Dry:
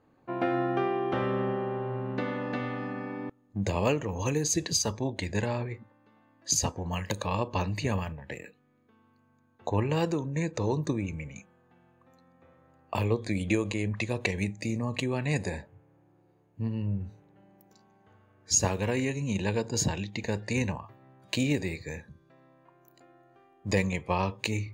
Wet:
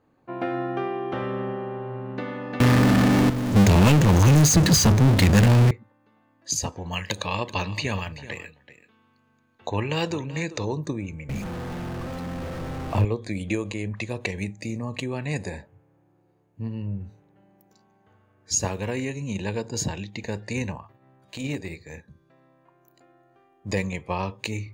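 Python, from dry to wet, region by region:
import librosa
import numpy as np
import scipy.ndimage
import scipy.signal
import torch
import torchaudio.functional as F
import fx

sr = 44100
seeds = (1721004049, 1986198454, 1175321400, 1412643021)

y = fx.chain(x, sr, fx.low_shelf_res(hz=280.0, db=8.5, q=1.5),
    fx.power_curve(exponent=0.35),
    fx.band_squash(depth_pct=40), at=(2.6, 5.71))
y = fx.chain(y, sr, fx.peak_eq(hz=3300.0, db=9.5, octaves=2.1),
    fx.echo_single(ms=382, db=-15.5), at=(6.72, 10.65))
y = fx.chain(y, sr, fx.zero_step(step_db=-30.5),
    fx.tilt_eq(slope=-2.5), at=(11.29, 13.05))
y = fx.chain(y, sr, fx.hum_notches(base_hz=60, count=8),
    fx.transient(attack_db=-12, sustain_db=-6), at=(20.82, 22.08))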